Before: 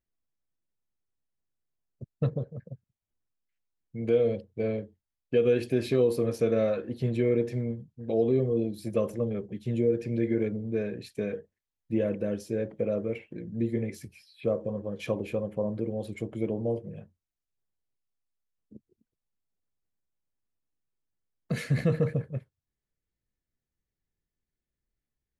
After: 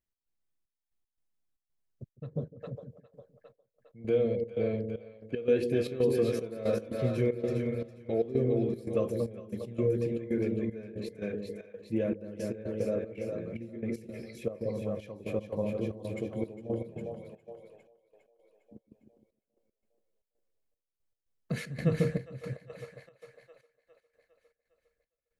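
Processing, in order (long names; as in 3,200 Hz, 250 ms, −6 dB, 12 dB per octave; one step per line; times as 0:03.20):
echo with a time of its own for lows and highs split 500 Hz, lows 155 ms, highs 406 ms, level −4 dB
gate pattern "x.xxx..x.xx" 115 BPM −12 dB
level −3 dB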